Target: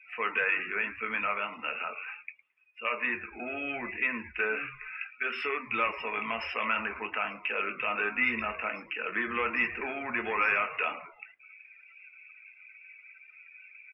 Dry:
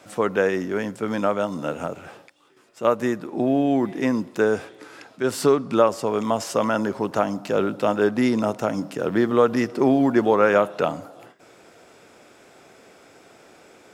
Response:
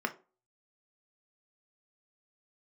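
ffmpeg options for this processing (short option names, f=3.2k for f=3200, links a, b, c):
-filter_complex "[0:a]asplit=2[a][b];[b]alimiter=limit=-12dB:level=0:latency=1,volume=-3dB[c];[a][c]amix=inputs=2:normalize=0,aeval=exprs='0.891*(cos(1*acos(clip(val(0)/0.891,-1,1)))-cos(1*PI/2))+0.0708*(cos(5*acos(clip(val(0)/0.891,-1,1)))-cos(5*PI/2))':c=same,bandpass=f=2.5k:t=q:w=8.5:csg=0,asoftclip=type=tanh:threshold=-28dB[d];[1:a]atrim=start_sample=2205[e];[d][e]afir=irnorm=-1:irlink=0,acontrast=36,asplit=6[f][g][h][i][j][k];[g]adelay=109,afreqshift=-150,volume=-15dB[l];[h]adelay=218,afreqshift=-300,volume=-20.4dB[m];[i]adelay=327,afreqshift=-450,volume=-25.7dB[n];[j]adelay=436,afreqshift=-600,volume=-31.1dB[o];[k]adelay=545,afreqshift=-750,volume=-36.4dB[p];[f][l][m][n][o][p]amix=inputs=6:normalize=0,afftdn=nr=25:nf=-42"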